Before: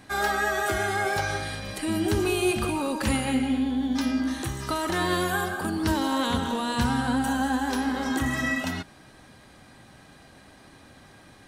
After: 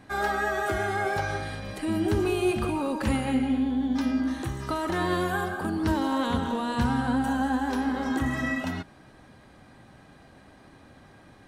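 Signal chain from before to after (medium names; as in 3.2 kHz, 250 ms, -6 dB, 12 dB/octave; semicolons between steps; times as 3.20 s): treble shelf 2.6 kHz -9.5 dB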